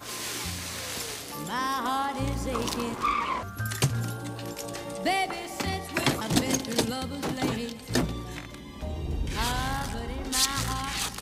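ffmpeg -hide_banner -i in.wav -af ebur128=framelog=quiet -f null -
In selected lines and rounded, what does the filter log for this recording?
Integrated loudness:
  I:         -29.6 LUFS
  Threshold: -39.6 LUFS
Loudness range:
  LRA:         2.3 LU
  Threshold: -49.6 LUFS
  LRA low:   -30.9 LUFS
  LRA high:  -28.6 LUFS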